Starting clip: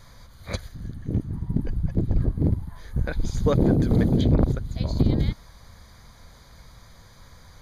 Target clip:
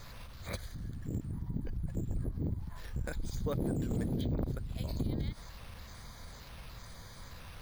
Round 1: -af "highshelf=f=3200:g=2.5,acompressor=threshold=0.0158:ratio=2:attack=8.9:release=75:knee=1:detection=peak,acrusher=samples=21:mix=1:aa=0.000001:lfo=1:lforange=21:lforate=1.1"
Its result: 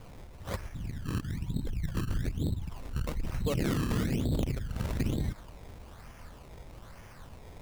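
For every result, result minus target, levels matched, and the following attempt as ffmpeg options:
decimation with a swept rate: distortion +10 dB; compression: peak gain reduction -3.5 dB
-af "highshelf=f=3200:g=2.5,acompressor=threshold=0.0158:ratio=2:attack=8.9:release=75:knee=1:detection=peak,acrusher=samples=4:mix=1:aa=0.000001:lfo=1:lforange=4:lforate=1.1"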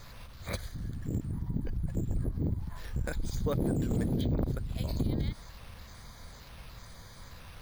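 compression: peak gain reduction -3.5 dB
-af "highshelf=f=3200:g=2.5,acompressor=threshold=0.00668:ratio=2:attack=8.9:release=75:knee=1:detection=peak,acrusher=samples=4:mix=1:aa=0.000001:lfo=1:lforange=4:lforate=1.1"

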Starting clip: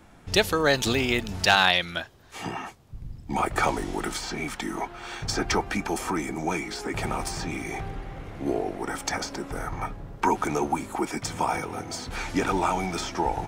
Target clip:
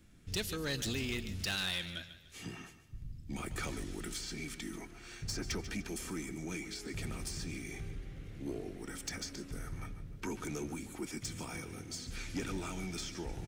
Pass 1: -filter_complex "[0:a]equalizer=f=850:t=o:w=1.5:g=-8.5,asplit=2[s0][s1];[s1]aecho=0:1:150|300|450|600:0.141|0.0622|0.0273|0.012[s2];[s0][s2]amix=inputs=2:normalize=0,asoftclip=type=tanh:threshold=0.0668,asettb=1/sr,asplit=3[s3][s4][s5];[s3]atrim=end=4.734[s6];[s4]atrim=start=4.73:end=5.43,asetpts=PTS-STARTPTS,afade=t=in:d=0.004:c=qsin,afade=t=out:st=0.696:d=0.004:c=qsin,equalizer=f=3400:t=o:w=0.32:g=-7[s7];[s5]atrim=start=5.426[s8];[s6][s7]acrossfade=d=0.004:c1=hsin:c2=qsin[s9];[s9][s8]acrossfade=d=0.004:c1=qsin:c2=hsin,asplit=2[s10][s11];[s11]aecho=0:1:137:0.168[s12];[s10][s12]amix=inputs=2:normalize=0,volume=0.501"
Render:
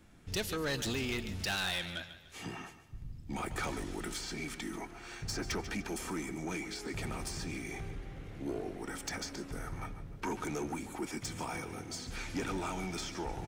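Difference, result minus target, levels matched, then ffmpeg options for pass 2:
1 kHz band +6.0 dB
-filter_complex "[0:a]equalizer=f=850:t=o:w=1.5:g=-20,asplit=2[s0][s1];[s1]aecho=0:1:150|300|450|600:0.141|0.0622|0.0273|0.012[s2];[s0][s2]amix=inputs=2:normalize=0,asoftclip=type=tanh:threshold=0.0668,asettb=1/sr,asplit=3[s3][s4][s5];[s3]atrim=end=4.734[s6];[s4]atrim=start=4.73:end=5.43,asetpts=PTS-STARTPTS,afade=t=in:d=0.004:c=qsin,afade=t=out:st=0.696:d=0.004:c=qsin,equalizer=f=3400:t=o:w=0.32:g=-7[s7];[s5]atrim=start=5.426[s8];[s6][s7]acrossfade=d=0.004:c1=hsin:c2=qsin[s9];[s9][s8]acrossfade=d=0.004:c1=qsin:c2=hsin,asplit=2[s10][s11];[s11]aecho=0:1:137:0.168[s12];[s10][s12]amix=inputs=2:normalize=0,volume=0.501"

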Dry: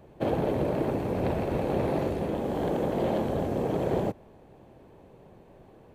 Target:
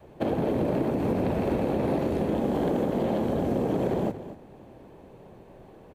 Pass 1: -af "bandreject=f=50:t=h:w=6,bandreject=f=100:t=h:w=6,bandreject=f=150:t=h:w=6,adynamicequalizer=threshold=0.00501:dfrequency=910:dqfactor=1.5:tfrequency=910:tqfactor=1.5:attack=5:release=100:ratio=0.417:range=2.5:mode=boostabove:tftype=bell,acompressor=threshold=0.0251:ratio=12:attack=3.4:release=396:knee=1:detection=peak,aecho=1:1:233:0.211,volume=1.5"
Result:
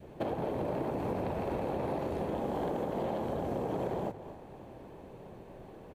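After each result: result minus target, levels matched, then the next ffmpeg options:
compression: peak gain reduction +8.5 dB; 1 kHz band +4.5 dB
-af "bandreject=f=50:t=h:w=6,bandreject=f=100:t=h:w=6,bandreject=f=150:t=h:w=6,adynamicequalizer=threshold=0.00501:dfrequency=910:dqfactor=1.5:tfrequency=910:tqfactor=1.5:attack=5:release=100:ratio=0.417:range=2.5:mode=boostabove:tftype=bell,acompressor=threshold=0.0668:ratio=12:attack=3.4:release=396:knee=1:detection=peak,aecho=1:1:233:0.211,volume=1.5"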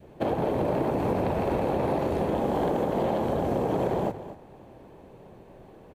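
1 kHz band +4.5 dB
-af "bandreject=f=50:t=h:w=6,bandreject=f=100:t=h:w=6,bandreject=f=150:t=h:w=6,adynamicequalizer=threshold=0.00501:dfrequency=240:dqfactor=1.5:tfrequency=240:tqfactor=1.5:attack=5:release=100:ratio=0.417:range=2.5:mode=boostabove:tftype=bell,acompressor=threshold=0.0668:ratio=12:attack=3.4:release=396:knee=1:detection=peak,aecho=1:1:233:0.211,volume=1.5"

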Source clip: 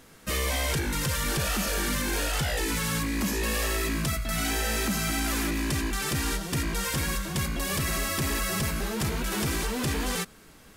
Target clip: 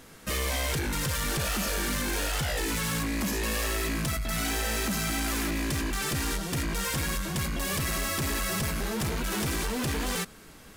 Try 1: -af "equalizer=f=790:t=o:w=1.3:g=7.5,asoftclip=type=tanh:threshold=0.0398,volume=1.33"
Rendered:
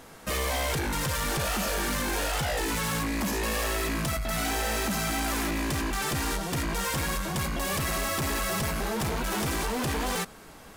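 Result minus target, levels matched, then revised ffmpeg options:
1 kHz band +3.5 dB
-af "asoftclip=type=tanh:threshold=0.0398,volume=1.33"

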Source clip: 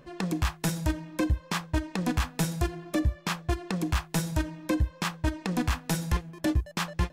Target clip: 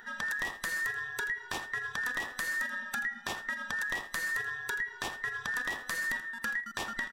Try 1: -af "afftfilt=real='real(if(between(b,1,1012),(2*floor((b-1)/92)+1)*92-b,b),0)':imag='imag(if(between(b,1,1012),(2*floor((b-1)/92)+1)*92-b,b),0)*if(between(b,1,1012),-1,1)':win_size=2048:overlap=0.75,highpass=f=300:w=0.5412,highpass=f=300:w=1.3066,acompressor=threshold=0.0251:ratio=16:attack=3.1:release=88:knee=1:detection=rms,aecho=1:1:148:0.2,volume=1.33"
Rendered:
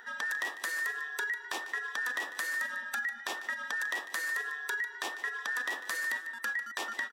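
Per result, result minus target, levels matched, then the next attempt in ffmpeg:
echo 66 ms late; 250 Hz band -5.5 dB
-af "afftfilt=real='real(if(between(b,1,1012),(2*floor((b-1)/92)+1)*92-b,b),0)':imag='imag(if(between(b,1,1012),(2*floor((b-1)/92)+1)*92-b,b),0)*if(between(b,1,1012),-1,1)':win_size=2048:overlap=0.75,highpass=f=300:w=0.5412,highpass=f=300:w=1.3066,acompressor=threshold=0.0251:ratio=16:attack=3.1:release=88:knee=1:detection=rms,aecho=1:1:82:0.2,volume=1.33"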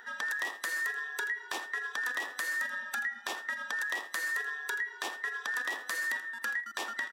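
250 Hz band -6.0 dB
-af "afftfilt=real='real(if(between(b,1,1012),(2*floor((b-1)/92)+1)*92-b,b),0)':imag='imag(if(between(b,1,1012),(2*floor((b-1)/92)+1)*92-b,b),0)*if(between(b,1,1012),-1,1)':win_size=2048:overlap=0.75,acompressor=threshold=0.0251:ratio=16:attack=3.1:release=88:knee=1:detection=rms,aecho=1:1:82:0.2,volume=1.33"

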